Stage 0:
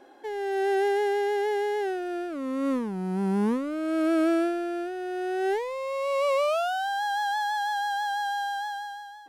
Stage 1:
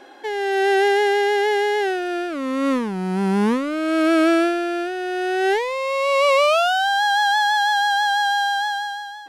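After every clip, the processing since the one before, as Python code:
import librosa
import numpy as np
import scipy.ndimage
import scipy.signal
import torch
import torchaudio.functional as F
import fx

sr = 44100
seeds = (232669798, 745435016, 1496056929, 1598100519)

y = fx.peak_eq(x, sr, hz=3100.0, db=8.5, octaves=2.9)
y = y * librosa.db_to_amplitude(5.5)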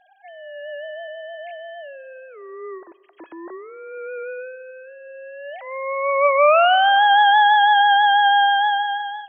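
y = fx.sine_speech(x, sr)
y = fx.rev_plate(y, sr, seeds[0], rt60_s=2.2, hf_ratio=0.8, predelay_ms=0, drr_db=18.0)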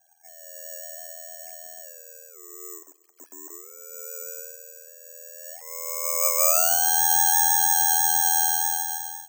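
y = x * np.sin(2.0 * np.pi * 41.0 * np.arange(len(x)) / sr)
y = (np.kron(scipy.signal.resample_poly(y, 1, 6), np.eye(6)[0]) * 6)[:len(y)]
y = y * librosa.db_to_amplitude(-11.0)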